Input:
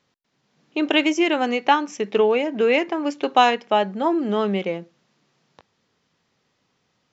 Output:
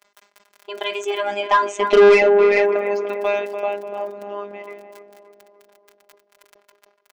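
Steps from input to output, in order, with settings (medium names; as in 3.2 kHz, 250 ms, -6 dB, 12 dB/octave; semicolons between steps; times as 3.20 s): Doppler pass-by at 2.05 s, 35 m/s, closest 3.6 m; crackle 17 per s -43 dBFS; bass shelf 130 Hz -10.5 dB; on a send: tape echo 292 ms, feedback 62%, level -9 dB, low-pass 1.5 kHz; on the sum: robot voice 203 Hz; FFT filter 160 Hz 0 dB, 680 Hz +14 dB, 1.9 kHz +13 dB, 3.7 kHz +8 dB; saturation -15 dBFS, distortion -8 dB; comb 3 ms, depth 34%; decay stretcher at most 130 dB/s; trim +7.5 dB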